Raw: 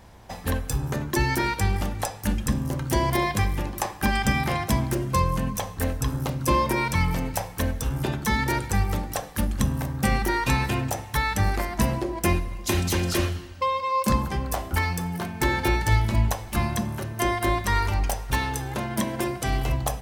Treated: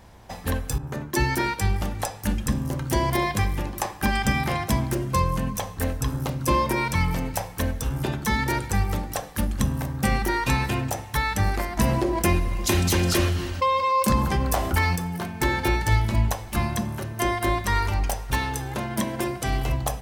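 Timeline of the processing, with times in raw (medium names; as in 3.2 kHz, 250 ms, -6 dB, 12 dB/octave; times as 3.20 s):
0.78–1.82 s: three bands expanded up and down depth 70%
11.77–14.96 s: level flattener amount 50%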